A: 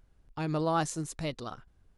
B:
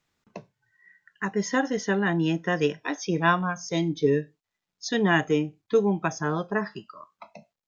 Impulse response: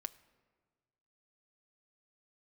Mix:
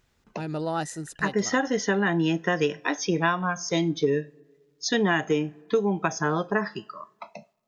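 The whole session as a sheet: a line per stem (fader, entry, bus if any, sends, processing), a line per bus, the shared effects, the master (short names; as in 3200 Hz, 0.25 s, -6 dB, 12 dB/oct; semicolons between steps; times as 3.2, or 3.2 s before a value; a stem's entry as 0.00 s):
0.0 dB, 0.00 s, send -19.5 dB, notch comb 1100 Hz
+2.5 dB, 0.00 s, send -7 dB, low shelf 220 Hz -5 dB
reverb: on, RT60 1.5 s, pre-delay 5 ms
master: compressor 6:1, threshold -19 dBFS, peak gain reduction 8.5 dB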